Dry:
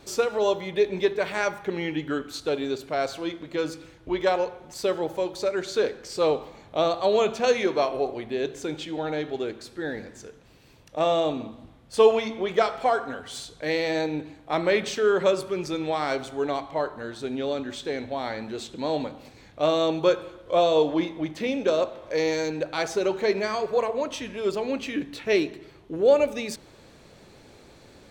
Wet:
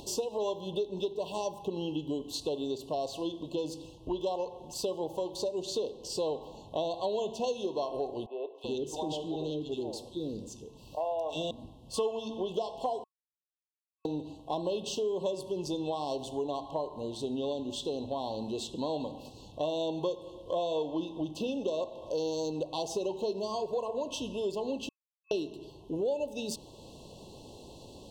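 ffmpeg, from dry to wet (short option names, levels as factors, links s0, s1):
-filter_complex "[0:a]asettb=1/sr,asplit=3[s0][s1][s2];[s0]atrim=end=8.264[s3];[s1]atrim=start=8.26:end=11.51,asetpts=PTS-STARTPTS,afade=t=in:d=0.004:c=qsin,afade=t=out:st=3.246:d=0.004:c=qsin,acrossover=split=490|2000[s4][s5][s6];[s6]adelay=320[s7];[s4]adelay=380[s8];[s8][s5][s7]amix=inputs=3:normalize=0,atrim=end_sample=143325[s9];[s2]atrim=start=11.506[s10];[s3][s9]acrossfade=d=0.004:c1=hsin:c2=qsin[s11];[s11][s10]acrossfade=d=0.004:c1=qsin:c2=hsin,asplit=5[s12][s13][s14][s15][s16];[s12]atrim=end=13.04,asetpts=PTS-STARTPTS,afade=t=out:st=13.036:d=0.004:c=hsin[s17];[s13]atrim=start=13.04:end=14.05,asetpts=PTS-STARTPTS,volume=0[s18];[s14]atrim=start=14.05:end=24.89,asetpts=PTS-STARTPTS,afade=t=in:d=0.004:c=hsin,afade=t=out:st=10.836:d=0.004:c=hsin[s19];[s15]atrim=start=24.89:end=25.31,asetpts=PTS-STARTPTS,volume=0[s20];[s16]atrim=start=25.31,asetpts=PTS-STARTPTS,afade=t=in:d=0.004:c=hsin[s21];[s17][s18][s19][s20][s21]concat=n=5:v=0:a=1,acompressor=mode=upward:threshold=0.00631:ratio=2.5,afftfilt=real='re*(1-between(b*sr/4096,1100,2600))':imag='im*(1-between(b*sr/4096,1100,2600))':win_size=4096:overlap=0.75,acompressor=threshold=0.0282:ratio=4"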